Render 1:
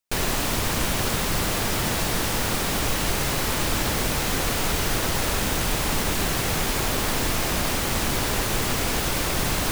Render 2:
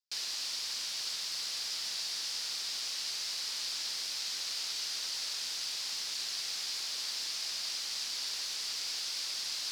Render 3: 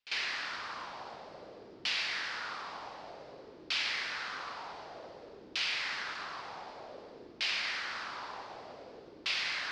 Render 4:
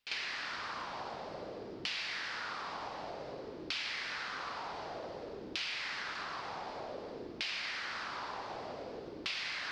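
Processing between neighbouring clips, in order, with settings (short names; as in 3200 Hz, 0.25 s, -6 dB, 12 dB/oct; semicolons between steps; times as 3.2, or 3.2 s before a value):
band-pass 4800 Hz, Q 3.6
reverse echo 47 ms -14.5 dB; LFO low-pass saw down 0.54 Hz 340–2800 Hz; gain +8 dB
low shelf 370 Hz +4 dB; compressor 3:1, threshold -44 dBFS, peak gain reduction 11 dB; gain +5 dB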